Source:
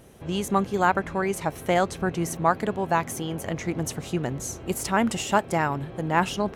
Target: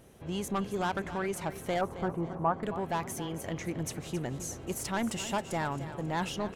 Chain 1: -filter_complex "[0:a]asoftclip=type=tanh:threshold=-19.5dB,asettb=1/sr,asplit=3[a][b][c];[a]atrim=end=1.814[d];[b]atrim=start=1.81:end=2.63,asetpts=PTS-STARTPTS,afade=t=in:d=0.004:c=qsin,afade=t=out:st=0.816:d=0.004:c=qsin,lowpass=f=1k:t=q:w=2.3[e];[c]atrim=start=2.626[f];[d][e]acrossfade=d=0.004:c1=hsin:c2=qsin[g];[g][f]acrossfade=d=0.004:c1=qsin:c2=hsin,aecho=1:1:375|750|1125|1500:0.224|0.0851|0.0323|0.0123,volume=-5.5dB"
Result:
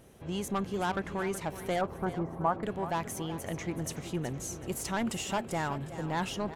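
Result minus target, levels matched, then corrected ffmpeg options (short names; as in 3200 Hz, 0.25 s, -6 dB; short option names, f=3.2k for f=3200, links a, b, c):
echo 0.105 s late
-filter_complex "[0:a]asoftclip=type=tanh:threshold=-19.5dB,asettb=1/sr,asplit=3[a][b][c];[a]atrim=end=1.814[d];[b]atrim=start=1.81:end=2.63,asetpts=PTS-STARTPTS,afade=t=in:d=0.004:c=qsin,afade=t=out:st=0.816:d=0.004:c=qsin,lowpass=f=1k:t=q:w=2.3[e];[c]atrim=start=2.626[f];[d][e]acrossfade=d=0.004:c1=hsin:c2=qsin[g];[g][f]acrossfade=d=0.004:c1=qsin:c2=hsin,aecho=1:1:270|540|810|1080:0.224|0.0851|0.0323|0.0123,volume=-5.5dB"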